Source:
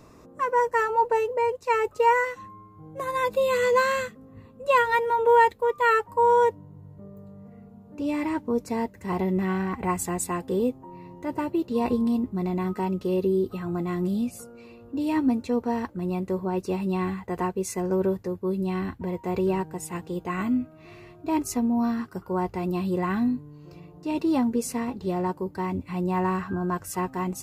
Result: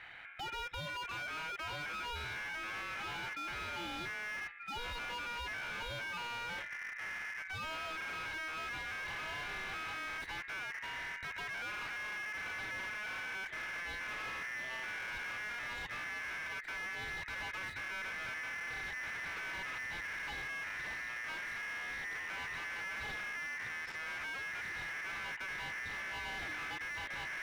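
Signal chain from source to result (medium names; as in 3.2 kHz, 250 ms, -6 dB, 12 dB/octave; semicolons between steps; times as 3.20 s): median filter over 9 samples; ever faster or slower copies 488 ms, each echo -7 st, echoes 2; peaking EQ 1.9 kHz +10 dB 0.46 oct; reverse; compression 5:1, threshold -29 dBFS, peak gain reduction 16 dB; reverse; peak limiter -29 dBFS, peak gain reduction 10 dB; in parallel at +1.5 dB: level held to a coarse grid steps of 22 dB; on the sum: hard clipper -33 dBFS, distortion -11 dB; treble shelf 3.2 kHz -11.5 dB; feedback comb 200 Hz, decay 0.48 s, harmonics odd, mix 50%; ring modulator 1.9 kHz; slew-rate limiter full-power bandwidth 9.2 Hz; trim +6.5 dB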